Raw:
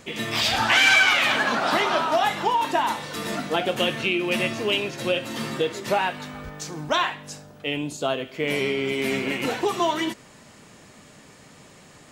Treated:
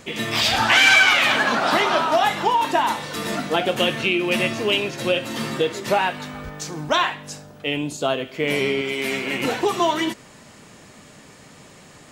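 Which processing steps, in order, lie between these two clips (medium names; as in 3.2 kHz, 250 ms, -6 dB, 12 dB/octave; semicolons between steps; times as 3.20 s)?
8.81–9.33 s: bass shelf 440 Hz -7.5 dB; trim +3 dB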